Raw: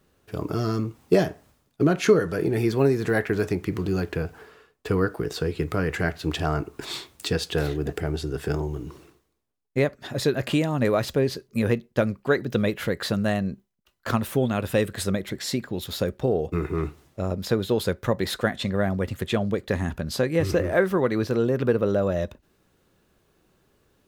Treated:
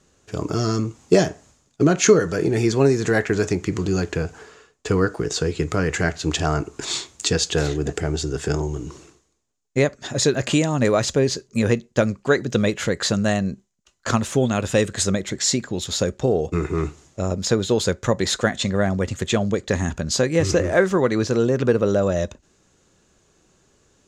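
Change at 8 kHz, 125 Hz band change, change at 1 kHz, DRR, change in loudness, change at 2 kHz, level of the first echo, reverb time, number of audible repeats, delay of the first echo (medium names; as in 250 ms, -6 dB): +13.5 dB, +3.5 dB, +3.5 dB, no reverb, +4.0 dB, +4.0 dB, no echo, no reverb, no echo, no echo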